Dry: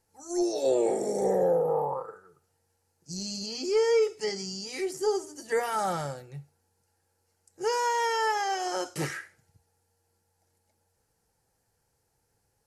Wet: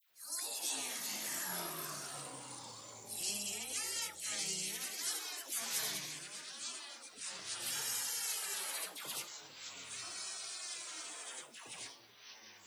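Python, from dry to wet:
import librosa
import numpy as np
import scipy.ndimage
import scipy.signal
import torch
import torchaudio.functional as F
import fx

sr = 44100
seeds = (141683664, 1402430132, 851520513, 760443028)

p1 = np.diff(x, prepend=0.0)
p2 = fx.spec_gate(p1, sr, threshold_db=-20, keep='weak')
p3 = fx.rider(p2, sr, range_db=10, speed_s=0.5)
p4 = p2 + (p3 * librosa.db_to_amplitude(1.0))
p5 = fx.dispersion(p4, sr, late='lows', ms=104.0, hz=1200.0)
p6 = fx.echo_pitch(p5, sr, ms=256, semitones=-4, count=3, db_per_echo=-6.0)
y = p6 * librosa.db_to_amplitude(9.5)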